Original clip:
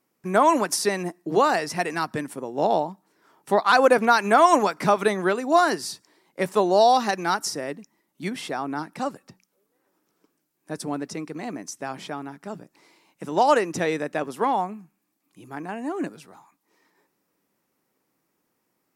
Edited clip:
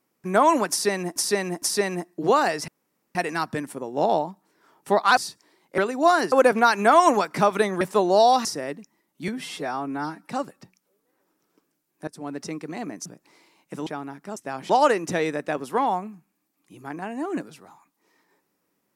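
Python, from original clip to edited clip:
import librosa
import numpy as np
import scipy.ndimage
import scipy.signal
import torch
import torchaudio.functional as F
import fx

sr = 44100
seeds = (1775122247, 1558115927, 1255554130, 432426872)

y = fx.edit(x, sr, fx.repeat(start_s=0.7, length_s=0.46, count=3),
    fx.insert_room_tone(at_s=1.76, length_s=0.47),
    fx.swap(start_s=3.78, length_s=1.49, other_s=5.81, other_length_s=0.61),
    fx.cut(start_s=7.06, length_s=0.39),
    fx.stretch_span(start_s=8.28, length_s=0.67, factor=1.5),
    fx.fade_in_from(start_s=10.74, length_s=0.36, floor_db=-20.0),
    fx.swap(start_s=11.72, length_s=0.33, other_s=12.55, other_length_s=0.81), tone=tone)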